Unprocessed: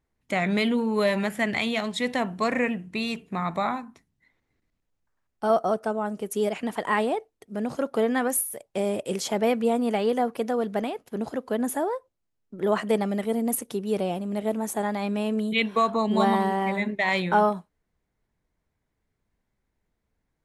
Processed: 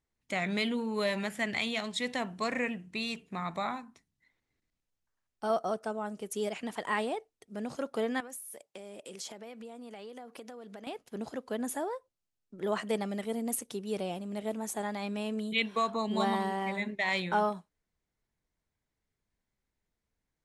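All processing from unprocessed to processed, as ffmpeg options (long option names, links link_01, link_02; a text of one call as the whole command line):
ffmpeg -i in.wav -filter_complex "[0:a]asettb=1/sr,asplit=3[link_01][link_02][link_03];[link_01]atrim=end=8.204[link_04];[link_02]atrim=start=8.2:end=10.87,asetpts=PTS-STARTPTS,afade=type=in:duration=0.004:curve=qsin,afade=type=out:start_time=2.666:duration=0.004:curve=qsin,highpass=180,acompressor=threshold=-34dB:ratio=8:attack=3.2:release=140:knee=1:detection=peak[link_05];[link_03]atrim=start=10.866[link_06];[link_04][link_05]acrossfade=duration=0.004:curve1=hsin:curve2=qsin[link_07];[link_07][link_06]acrossfade=duration=0.004:curve1=qsin:curve2=hsin,lowpass=8900,highshelf=frequency=2700:gain=8.5,volume=-8.5dB" out.wav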